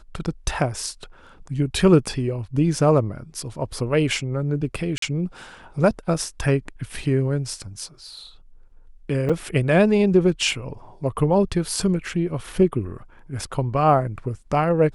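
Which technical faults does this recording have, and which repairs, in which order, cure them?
4.98–5.02 gap 43 ms
9.29–9.3 gap 5.5 ms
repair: interpolate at 4.98, 43 ms; interpolate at 9.29, 5.5 ms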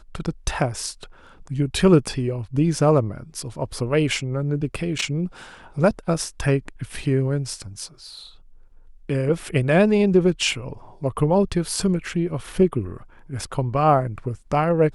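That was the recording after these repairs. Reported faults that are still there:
none

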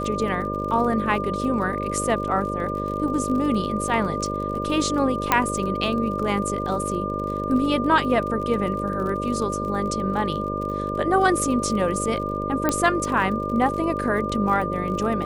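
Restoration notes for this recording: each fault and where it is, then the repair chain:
buzz 50 Hz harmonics 12 -29 dBFS
crackle 41/s -31 dBFS
tone 1200 Hz -28 dBFS
5.32 pop -3 dBFS
12.69 pop -7 dBFS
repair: de-click; de-hum 50 Hz, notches 12; notch 1200 Hz, Q 30

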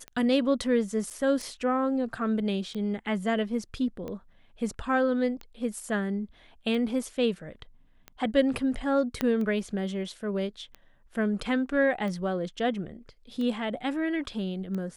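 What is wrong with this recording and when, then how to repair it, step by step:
tick 45 rpm -25 dBFS
1.1–1.11 gap 7.2 ms
9.21 pop -13 dBFS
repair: de-click; interpolate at 1.1, 7.2 ms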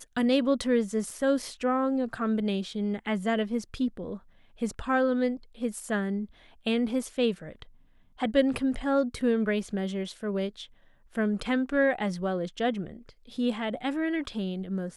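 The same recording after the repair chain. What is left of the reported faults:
9.21 pop

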